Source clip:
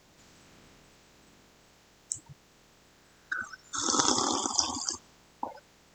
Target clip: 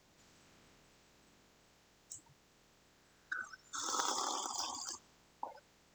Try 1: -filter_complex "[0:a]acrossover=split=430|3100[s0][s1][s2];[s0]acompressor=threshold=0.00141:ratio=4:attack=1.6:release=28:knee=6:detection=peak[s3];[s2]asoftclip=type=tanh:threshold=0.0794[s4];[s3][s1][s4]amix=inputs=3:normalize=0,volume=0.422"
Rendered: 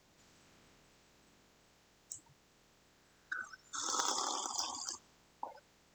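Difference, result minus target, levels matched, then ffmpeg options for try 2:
saturation: distortion -4 dB
-filter_complex "[0:a]acrossover=split=430|3100[s0][s1][s2];[s0]acompressor=threshold=0.00141:ratio=4:attack=1.6:release=28:knee=6:detection=peak[s3];[s2]asoftclip=type=tanh:threshold=0.0355[s4];[s3][s1][s4]amix=inputs=3:normalize=0,volume=0.422"

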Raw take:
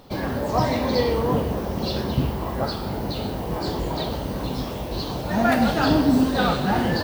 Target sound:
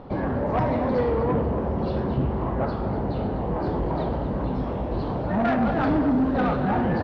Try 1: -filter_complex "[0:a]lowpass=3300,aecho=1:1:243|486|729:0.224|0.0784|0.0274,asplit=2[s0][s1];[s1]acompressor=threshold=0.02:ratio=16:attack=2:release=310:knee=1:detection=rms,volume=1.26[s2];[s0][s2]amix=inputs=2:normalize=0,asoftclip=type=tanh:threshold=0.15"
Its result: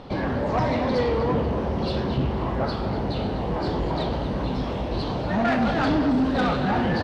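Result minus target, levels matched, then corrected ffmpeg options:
4 kHz band +11.5 dB
-filter_complex "[0:a]lowpass=1400,aecho=1:1:243|486|729:0.224|0.0784|0.0274,asplit=2[s0][s1];[s1]acompressor=threshold=0.02:ratio=16:attack=2:release=310:knee=1:detection=rms,volume=1.26[s2];[s0][s2]amix=inputs=2:normalize=0,asoftclip=type=tanh:threshold=0.15"

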